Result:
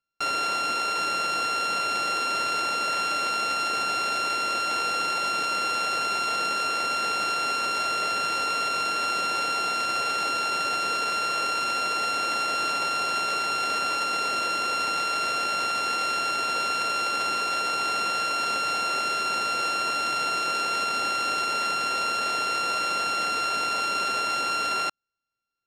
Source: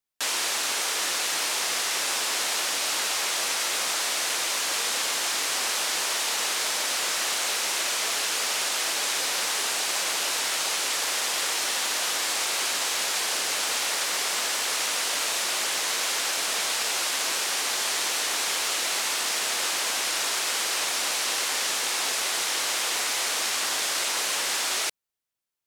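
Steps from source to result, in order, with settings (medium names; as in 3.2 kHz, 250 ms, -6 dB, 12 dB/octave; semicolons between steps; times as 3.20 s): sorted samples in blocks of 32 samples; distance through air 82 m; trim +2.5 dB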